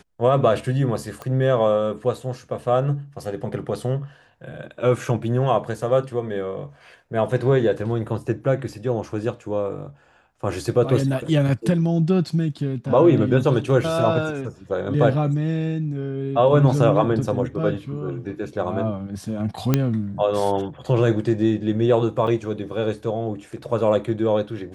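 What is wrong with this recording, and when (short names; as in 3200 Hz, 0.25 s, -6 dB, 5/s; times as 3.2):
1.22 pop -20 dBFS
19.74 pop -4 dBFS
22.27 gap 4.2 ms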